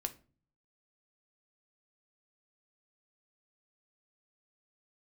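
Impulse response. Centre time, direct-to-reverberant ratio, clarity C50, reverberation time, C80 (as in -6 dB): 5 ms, 7.0 dB, 17.0 dB, 0.40 s, 23.0 dB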